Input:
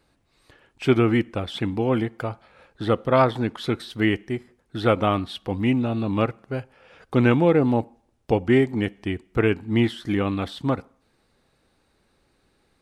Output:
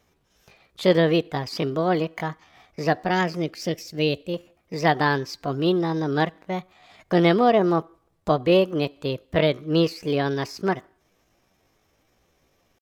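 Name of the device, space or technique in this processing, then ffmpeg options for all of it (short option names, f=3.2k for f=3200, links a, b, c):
chipmunk voice: -filter_complex "[0:a]asetrate=62367,aresample=44100,atempo=0.707107,asettb=1/sr,asplit=3[a][b][c];[a]atrim=end=3.104[d];[b]atrim=start=3.1:end=4.34,asetpts=PTS-STARTPTS,afade=t=in:d=0.004:c=qsin,afade=t=out:st=1.236:d=0.004:c=qsin,equalizer=f=1.1k:w=0.92:g=-9.5[e];[c]atrim=start=4.336[f];[d][e]acrossfade=d=0.004:c1=hsin:c2=qsin[g];[g][f]acrossfade=d=0.004:c1=qsin:c2=hsin"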